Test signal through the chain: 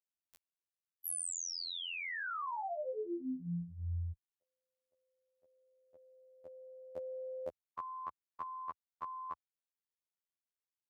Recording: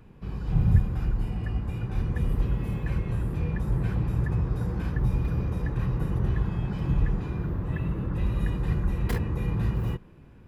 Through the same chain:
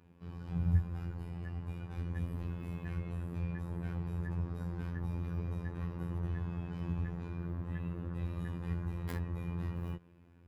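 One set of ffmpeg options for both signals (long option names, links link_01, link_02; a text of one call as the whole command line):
ffmpeg -i in.wav -af "highpass=frequency=47:width=0.5412,highpass=frequency=47:width=1.3066,afftfilt=real='hypot(re,im)*cos(PI*b)':imag='0':win_size=2048:overlap=0.75,adynamicequalizer=threshold=0.00501:dfrequency=2000:dqfactor=0.7:tfrequency=2000:tqfactor=0.7:attack=5:release=100:ratio=0.375:range=2.5:mode=cutabove:tftype=highshelf,volume=-6dB" out.wav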